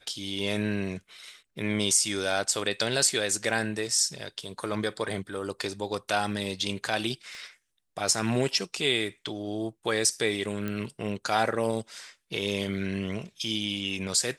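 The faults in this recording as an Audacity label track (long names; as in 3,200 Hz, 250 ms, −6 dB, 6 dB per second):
7.350000	7.350000	click −33 dBFS
10.680000	10.680000	click −19 dBFS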